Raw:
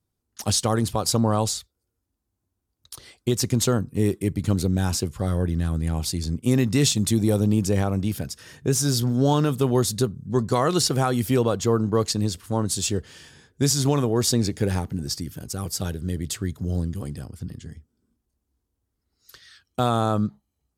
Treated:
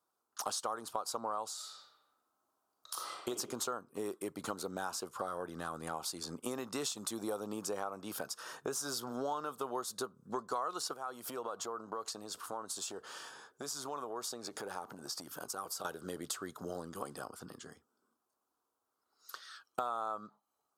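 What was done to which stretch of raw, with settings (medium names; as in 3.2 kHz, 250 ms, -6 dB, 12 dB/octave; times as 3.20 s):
1.54–3.28 s: reverb throw, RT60 1.1 s, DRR -2 dB
10.93–15.85 s: compression 12:1, threshold -31 dBFS
whole clip: high-pass 670 Hz 12 dB/octave; resonant high shelf 1.6 kHz -7 dB, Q 3; compression 5:1, threshold -42 dBFS; trim +5.5 dB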